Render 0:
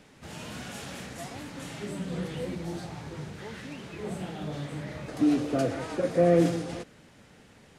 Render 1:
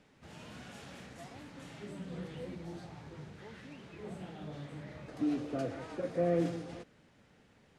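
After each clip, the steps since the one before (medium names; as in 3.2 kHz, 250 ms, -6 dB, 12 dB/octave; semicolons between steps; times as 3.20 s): treble shelf 7.6 kHz -10.5 dB; trim -9 dB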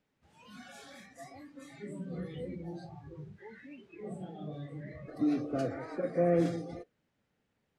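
spectral noise reduction 18 dB; trim +3 dB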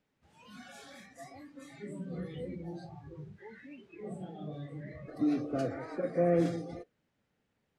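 no audible change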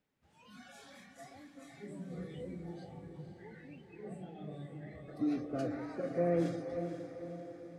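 echo that smears into a reverb 484 ms, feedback 55%, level -8.5 dB; trim -4 dB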